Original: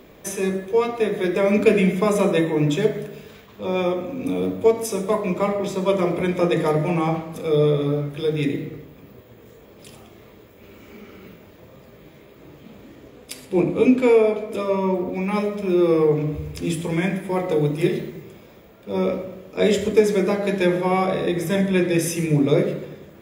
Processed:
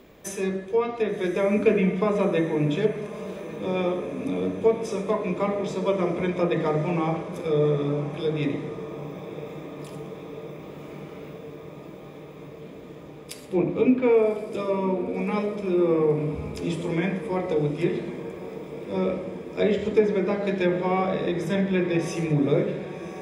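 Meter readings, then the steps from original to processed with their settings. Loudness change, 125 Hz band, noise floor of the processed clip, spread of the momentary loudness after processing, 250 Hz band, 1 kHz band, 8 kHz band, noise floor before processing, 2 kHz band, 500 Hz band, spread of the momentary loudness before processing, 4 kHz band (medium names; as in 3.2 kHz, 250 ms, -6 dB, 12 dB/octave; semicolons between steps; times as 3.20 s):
-4.0 dB, -4.0 dB, -42 dBFS, 18 LU, -3.5 dB, -3.5 dB, no reading, -48 dBFS, -4.5 dB, -3.5 dB, 10 LU, -6.0 dB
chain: low-pass that closes with the level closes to 2.6 kHz, closed at -14 dBFS; echo that smears into a reverb 1127 ms, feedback 76%, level -14 dB; trim -4 dB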